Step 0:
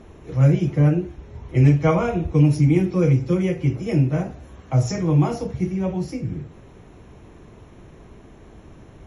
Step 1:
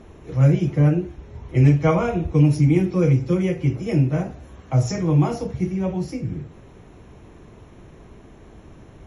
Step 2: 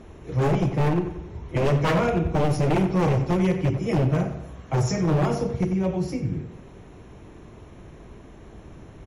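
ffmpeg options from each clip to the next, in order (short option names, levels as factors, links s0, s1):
-af anull
-filter_complex "[0:a]aeval=exprs='0.168*(abs(mod(val(0)/0.168+3,4)-2)-1)':c=same,asplit=2[s0][s1];[s1]adelay=91,lowpass=f=3700:p=1,volume=0.299,asplit=2[s2][s3];[s3]adelay=91,lowpass=f=3700:p=1,volume=0.52,asplit=2[s4][s5];[s5]adelay=91,lowpass=f=3700:p=1,volume=0.52,asplit=2[s6][s7];[s7]adelay=91,lowpass=f=3700:p=1,volume=0.52,asplit=2[s8][s9];[s9]adelay=91,lowpass=f=3700:p=1,volume=0.52,asplit=2[s10][s11];[s11]adelay=91,lowpass=f=3700:p=1,volume=0.52[s12];[s0][s2][s4][s6][s8][s10][s12]amix=inputs=7:normalize=0"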